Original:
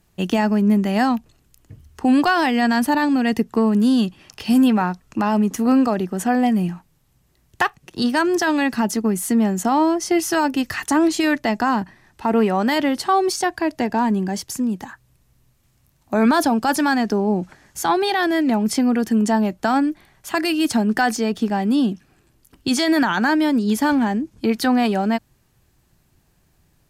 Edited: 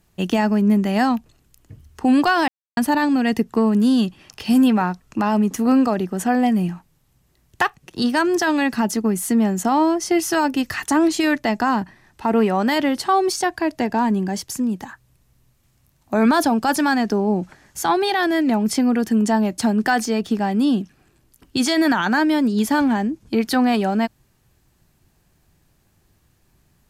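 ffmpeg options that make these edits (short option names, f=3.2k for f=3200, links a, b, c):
-filter_complex "[0:a]asplit=4[a][b][c][d];[a]atrim=end=2.48,asetpts=PTS-STARTPTS,afade=t=out:st=2.476:d=0.004:c=hsin[e];[b]atrim=start=2.48:end=2.77,asetpts=PTS-STARTPTS,volume=0[f];[c]atrim=start=2.77:end=19.582,asetpts=PTS-STARTPTS,afade=t=in:d=0.004:c=hsin[g];[d]atrim=start=20.688[h];[e][f][g]concat=n=3:v=0:a=1[i];[i][h]acrossfade=d=0.004:c1=hsin:c2=hsin"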